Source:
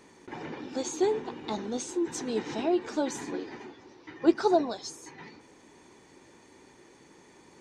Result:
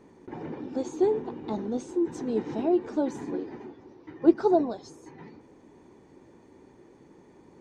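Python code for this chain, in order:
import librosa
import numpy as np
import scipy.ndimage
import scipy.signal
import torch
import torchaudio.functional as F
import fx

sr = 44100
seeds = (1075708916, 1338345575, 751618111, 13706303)

y = fx.tilt_shelf(x, sr, db=8.5, hz=1200.0)
y = y * librosa.db_to_amplitude(-4.0)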